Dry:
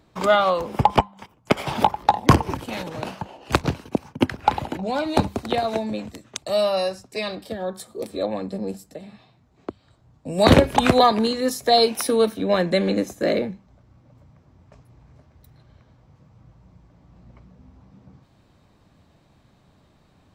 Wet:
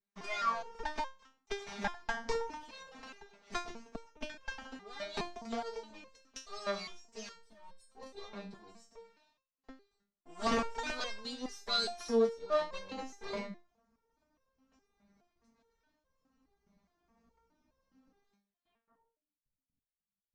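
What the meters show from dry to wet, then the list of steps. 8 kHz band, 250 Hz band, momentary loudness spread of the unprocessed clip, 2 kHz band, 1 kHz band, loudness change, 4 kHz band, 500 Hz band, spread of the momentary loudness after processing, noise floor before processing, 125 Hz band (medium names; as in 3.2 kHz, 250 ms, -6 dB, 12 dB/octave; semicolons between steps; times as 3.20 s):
-14.5 dB, -20.0 dB, 17 LU, -12.5 dB, -18.0 dB, -16.0 dB, -13.5 dB, -16.5 dB, 19 LU, -59 dBFS, -29.5 dB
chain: comb filter that takes the minimum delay 4.5 ms; de-hum 309 Hz, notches 5; time-frequency box 7.33–7.89 s, 240–7800 Hz -9 dB; gate with hold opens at -49 dBFS; peaking EQ 1.2 kHz +4.5 dB 2.8 oct; low-pass sweep 6 kHz -> 120 Hz, 18.54–19.50 s; resonator arpeggio 4.8 Hz 200–530 Hz; trim -5 dB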